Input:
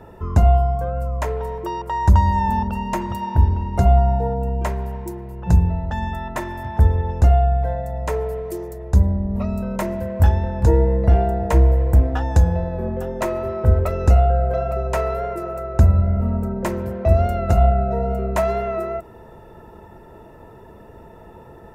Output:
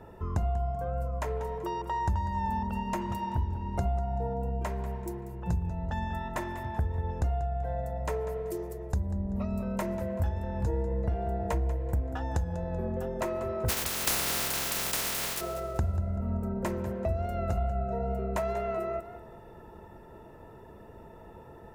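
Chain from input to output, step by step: 13.68–15.40 s: spectral contrast reduction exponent 0.1; compression 4:1, threshold -21 dBFS, peak gain reduction 11.5 dB; modulated delay 192 ms, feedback 35%, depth 91 cents, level -14 dB; trim -6.5 dB

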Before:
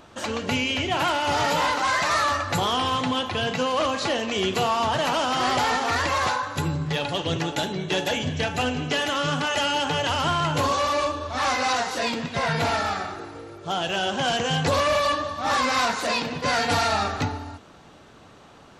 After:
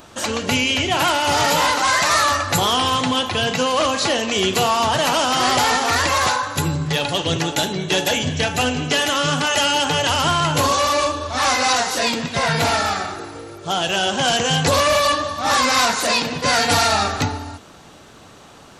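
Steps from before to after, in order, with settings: treble shelf 6 kHz +12 dB; trim +4.5 dB

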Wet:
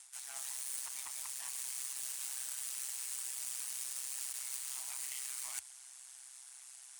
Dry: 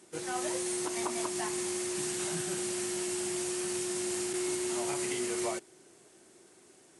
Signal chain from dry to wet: steep high-pass 740 Hz 96 dB/octave; Chebyshev shaper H 4 -10 dB, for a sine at -22.5 dBFS; reverse; compression 5:1, threshold -48 dBFS, peak gain reduction 16 dB; reverse; ring modulator 65 Hz; tilt EQ +4 dB/octave

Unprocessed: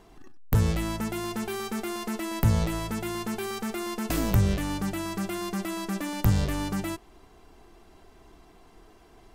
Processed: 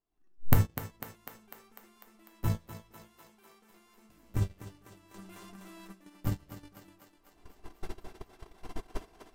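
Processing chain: recorder AGC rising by 40 dB/s; 3.08–3.70 s: bass shelf 140 Hz -12 dB; simulated room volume 75 m³, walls mixed, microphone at 0.37 m; flange 0.91 Hz, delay 2.8 ms, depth 5.5 ms, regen -78%; gate -20 dBFS, range -34 dB; thinning echo 249 ms, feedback 68%, high-pass 290 Hz, level -9 dB; 5.14–5.93 s: level flattener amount 70%

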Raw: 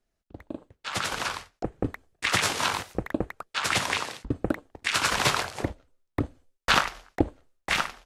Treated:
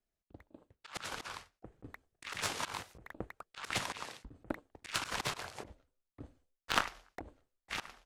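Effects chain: Chebyshev shaper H 2 -19 dB, 3 -9 dB, 4 -43 dB, 5 -27 dB, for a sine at -3.5 dBFS; slow attack 110 ms; hard clipper -16.5 dBFS, distortion -8 dB; trim +5.5 dB

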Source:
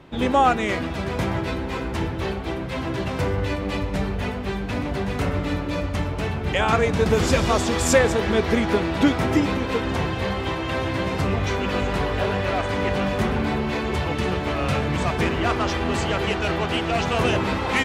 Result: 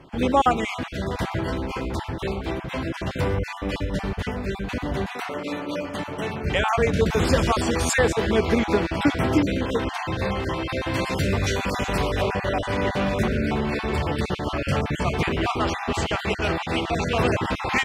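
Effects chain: random holes in the spectrogram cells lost 24%; 5.12–6.43 s: high-pass 390 Hz -> 150 Hz 12 dB/octave; 10.93–12.21 s: treble shelf 4 kHz -> 5.7 kHz +11 dB

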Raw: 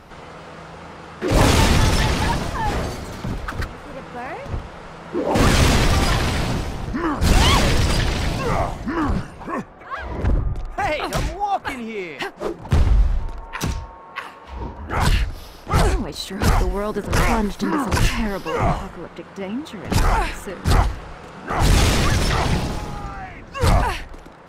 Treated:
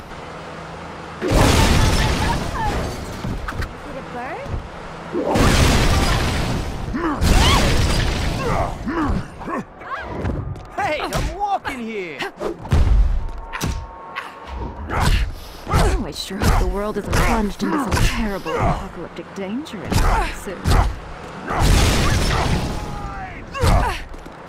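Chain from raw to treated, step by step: 9.98–10.97 s: high-pass 92 Hz 12 dB/octave; in parallel at -1.5 dB: upward compressor, threshold -21 dBFS; on the sum: trim -4.5 dB

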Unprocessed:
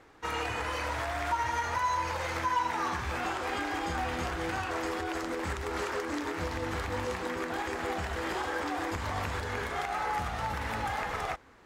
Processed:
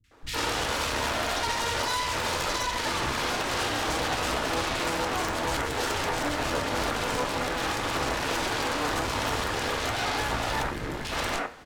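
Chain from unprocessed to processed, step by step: 10.59–11.01 s: FFT filter 330 Hz 0 dB, 770 Hz -19 dB, 1.8 kHz -10 dB; Chebyshev shaper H 3 -15 dB, 5 -33 dB, 6 -16 dB, 8 -7 dB, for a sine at -19 dBFS; peak limiter -25 dBFS, peak gain reduction 9 dB; three bands offset in time lows, highs, mids 40/110 ms, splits 170/2200 Hz; on a send at -7 dB: reverberation, pre-delay 3 ms; on the sum: trim +5.5 dB

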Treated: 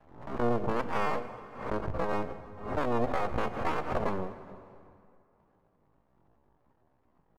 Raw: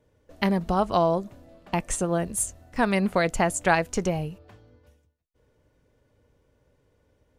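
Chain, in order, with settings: cycle switcher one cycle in 3, inverted; inverse Chebyshev low-pass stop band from 2.6 kHz, stop band 70 dB; half-wave rectifier; pitch shift +10.5 st; plate-style reverb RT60 2.6 s, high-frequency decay 0.75×, DRR 11 dB; swell ahead of each attack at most 88 dB/s

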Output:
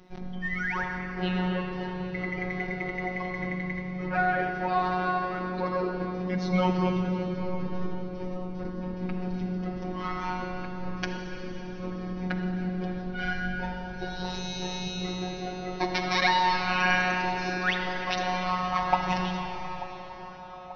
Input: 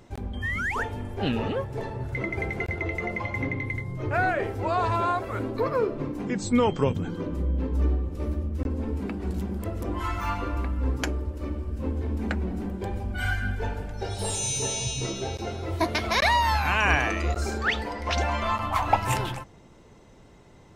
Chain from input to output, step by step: steep low-pass 5.9 kHz 96 dB/octave; band-stop 550 Hz, Q 12; robot voice 182 Hz; feedback echo behind a band-pass 887 ms, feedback 65%, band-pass 630 Hz, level -15.5 dB; on a send at -3 dB: reverberation RT60 4.8 s, pre-delay 37 ms

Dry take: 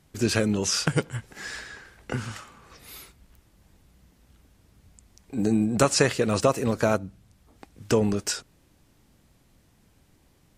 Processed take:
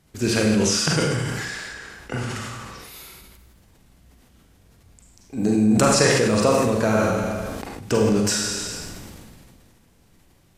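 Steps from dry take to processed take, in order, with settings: Schroeder reverb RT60 0.93 s, combs from 33 ms, DRR -0.5 dB; decay stretcher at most 23 dB/s

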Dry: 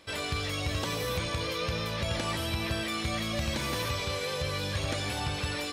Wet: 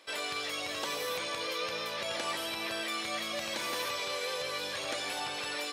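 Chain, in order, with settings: high-pass 420 Hz 12 dB/octave; trim -1 dB

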